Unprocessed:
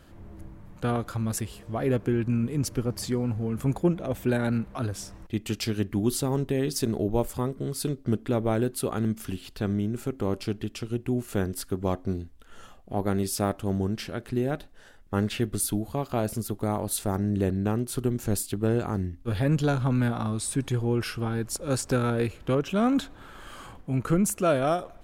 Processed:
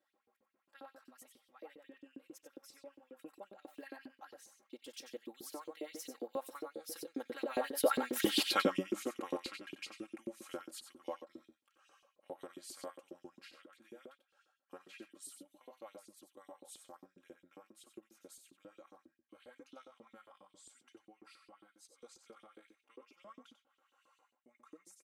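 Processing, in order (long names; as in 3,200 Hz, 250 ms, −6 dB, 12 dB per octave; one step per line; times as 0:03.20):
source passing by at 0:08.40, 39 m/s, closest 4.4 metres
comb filter 3.7 ms, depth 93%
single-tap delay 92 ms −7.5 dB
auto-filter high-pass saw up 7.4 Hz 310–4,300 Hz
level +8 dB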